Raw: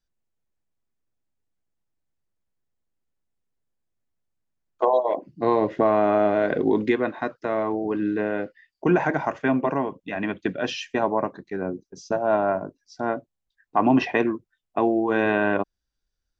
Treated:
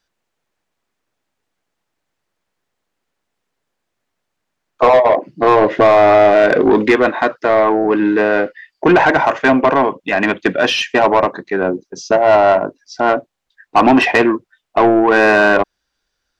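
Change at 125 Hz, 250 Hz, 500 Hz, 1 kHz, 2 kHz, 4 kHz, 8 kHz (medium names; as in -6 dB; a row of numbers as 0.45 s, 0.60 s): +5.5 dB, +8.0 dB, +11.0 dB, +12.0 dB, +14.0 dB, +15.0 dB, no reading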